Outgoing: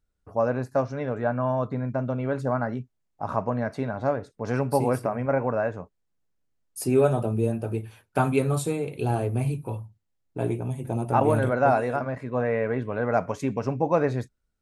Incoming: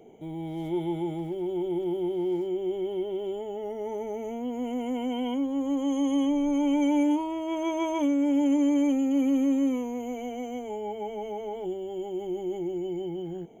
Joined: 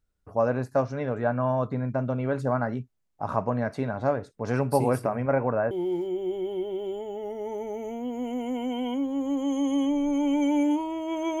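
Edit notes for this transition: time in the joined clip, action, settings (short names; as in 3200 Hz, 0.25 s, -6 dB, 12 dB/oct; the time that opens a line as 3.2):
outgoing
5.19–5.71 LPF 9000 Hz -> 1500 Hz
5.71 switch to incoming from 2.11 s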